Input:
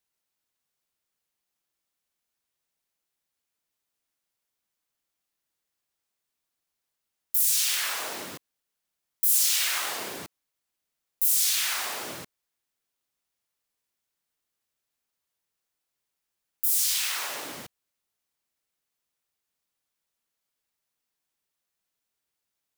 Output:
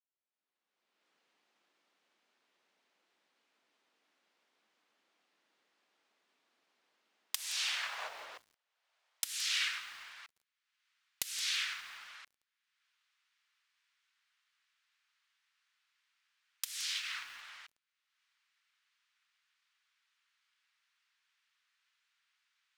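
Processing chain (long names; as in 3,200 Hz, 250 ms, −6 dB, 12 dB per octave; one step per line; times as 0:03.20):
camcorder AGC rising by 28 dB per second
high-pass filter 220 Hz 24 dB per octave, from 0:07.43 580 Hz, from 0:09.24 1,300 Hz
noise gate −25 dBFS, range −17 dB
low-pass filter 3,300 Hz 12 dB per octave
feedback echo at a low word length 170 ms, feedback 35%, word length 8 bits, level −14.5 dB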